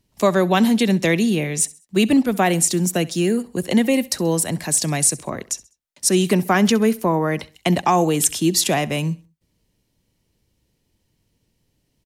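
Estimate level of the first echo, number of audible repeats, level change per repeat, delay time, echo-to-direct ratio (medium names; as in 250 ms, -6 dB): -21.0 dB, 2, -8.5 dB, 66 ms, -20.5 dB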